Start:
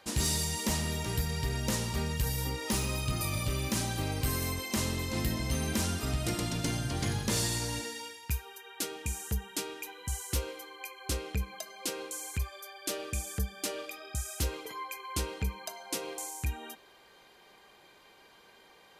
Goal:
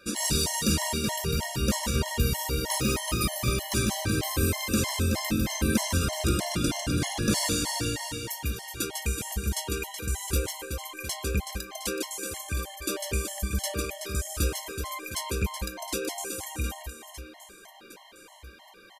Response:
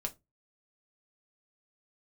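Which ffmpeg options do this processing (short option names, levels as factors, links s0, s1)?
-filter_complex "[0:a]aecho=1:1:150|375|712.5|1219|1978:0.631|0.398|0.251|0.158|0.1,asplit=2[s0][s1];[1:a]atrim=start_sample=2205,asetrate=70560,aresample=44100[s2];[s1][s2]afir=irnorm=-1:irlink=0,volume=0.794[s3];[s0][s3]amix=inputs=2:normalize=0,afftfilt=real='re*gt(sin(2*PI*3.2*pts/sr)*(1-2*mod(floor(b*sr/1024/560),2)),0)':imag='im*gt(sin(2*PI*3.2*pts/sr)*(1-2*mod(floor(b*sr/1024/560),2)),0)':win_size=1024:overlap=0.75,volume=1.41"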